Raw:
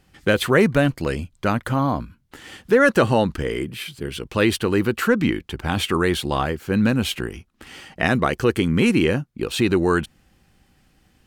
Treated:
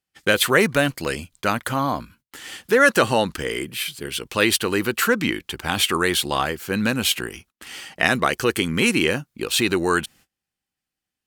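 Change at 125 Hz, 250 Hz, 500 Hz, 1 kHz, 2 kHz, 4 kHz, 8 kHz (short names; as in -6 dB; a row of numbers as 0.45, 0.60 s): -6.0, -4.0, -1.5, +1.0, +3.0, +5.5, +8.5 dB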